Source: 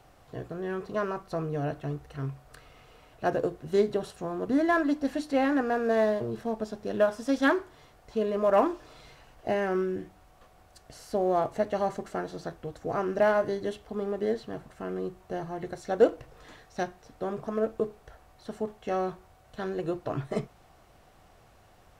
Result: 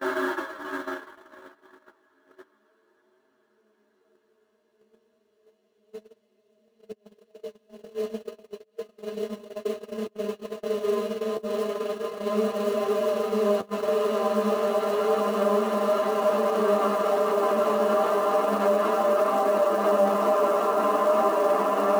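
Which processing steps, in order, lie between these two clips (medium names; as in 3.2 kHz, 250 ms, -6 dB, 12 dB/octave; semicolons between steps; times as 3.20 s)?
Paulstretch 31×, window 1.00 s, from 7.76 s; dynamic bell 1.2 kHz, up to +5 dB, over -46 dBFS, Q 2.2; in parallel at -9.5 dB: short-mantissa float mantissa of 2-bit; on the sum: high-pass 250 Hz 6 dB/octave; slow attack 123 ms; peak limiter -17.5 dBFS, peak gain reduction 7.5 dB; flange 0.31 Hz, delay 7.4 ms, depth 6.4 ms, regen +30%; gate -34 dBFS, range -32 dB; treble shelf 3.8 kHz +6.5 dB; trim +6.5 dB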